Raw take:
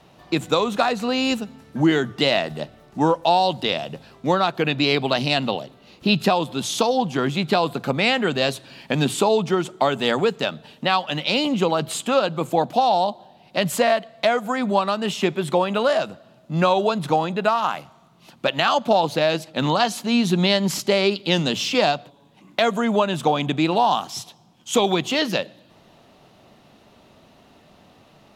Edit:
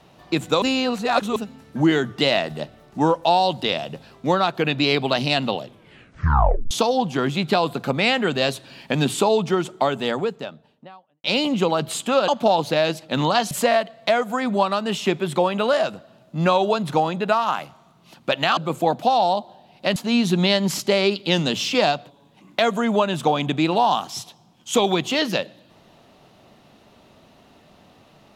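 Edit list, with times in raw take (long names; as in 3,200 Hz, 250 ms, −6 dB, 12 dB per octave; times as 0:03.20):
0:00.62–0:01.36: reverse
0:05.61: tape stop 1.10 s
0:09.57–0:11.24: fade out and dull
0:12.28–0:13.67: swap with 0:18.73–0:19.96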